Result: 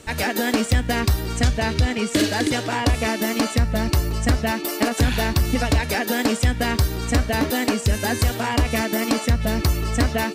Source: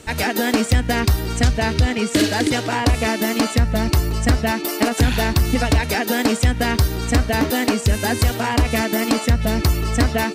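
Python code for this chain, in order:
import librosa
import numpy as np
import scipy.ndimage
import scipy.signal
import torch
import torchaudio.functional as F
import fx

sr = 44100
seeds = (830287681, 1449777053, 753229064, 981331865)

y = fx.comb_fb(x, sr, f0_hz=570.0, decay_s=0.36, harmonics='all', damping=0.0, mix_pct=70)
y = y * 10.0 ** (7.5 / 20.0)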